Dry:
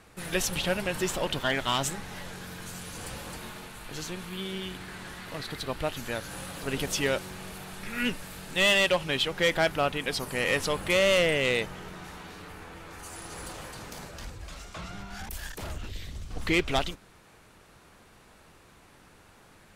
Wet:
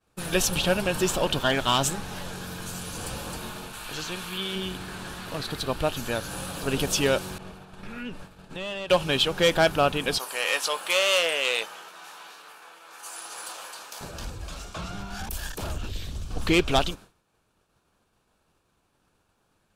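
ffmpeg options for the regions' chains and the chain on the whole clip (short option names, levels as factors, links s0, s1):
-filter_complex "[0:a]asettb=1/sr,asplit=3[s0][s1][s2];[s0]atrim=end=3.734[s3];[s1]atrim=start=3.73:end=4.56,asetpts=PTS-STARTPTS,afade=t=in:d=0.004:c=qsin,afade=t=out:st=0.826:d=0.004:c=qsin,acrossover=split=3700[s4][s5];[s5]acompressor=threshold=0.00355:ratio=4:attack=1:release=60[s6];[s4][s6]amix=inputs=2:normalize=0,tiltshelf=f=790:g=-5.5[s7];[s2]atrim=start=4.556[s8];[s3][s7]acrossfade=d=0.004:c1=hsin:c2=qsin[s9];[s9][s8]acrossfade=d=0.004:c1=qsin:c2=hsin,asettb=1/sr,asplit=3[s10][s11][s12];[s10]atrim=end=7.384[s13];[s11]atrim=start=7.38:end=8.9,asetpts=PTS-STARTPTS,afade=t=in:d=0.004:c=qsin,afade=t=out:st=1.516:d=0.004:c=qsin,agate=range=0.0224:threshold=0.0126:ratio=3:release=100:detection=peak,aemphasis=mode=reproduction:type=75kf,acompressor=threshold=0.0112:ratio=3:attack=3.2:release=140:knee=1:detection=peak[s14];[s12]atrim=start=8.896[s15];[s13][s14]acrossfade=d=0.004:c1=hsin:c2=qsin[s16];[s16][s15]acrossfade=d=0.004:c1=qsin:c2=hsin,asettb=1/sr,asplit=3[s17][s18][s19];[s17]atrim=end=10.184[s20];[s18]atrim=start=10.18:end=14.01,asetpts=PTS-STARTPTS,afade=t=in:d=0.004:c=qsin,afade=t=out:st=3.826:d=0.004:c=qsin,highpass=790,asplit=2[s21][s22];[s22]adelay=18,volume=0.266[s23];[s21][s23]amix=inputs=2:normalize=0,atrim=end_sample=168903[s24];[s19]atrim=start=14.006[s25];[s20][s24]acrossfade=d=0.004:c1=hsin:c2=qsin[s26];[s26][s25]acrossfade=d=0.004:c1=qsin:c2=hsin,agate=range=0.0224:threshold=0.00708:ratio=3:detection=peak,equalizer=f=2000:w=6.1:g=-11.5,volume=1.78"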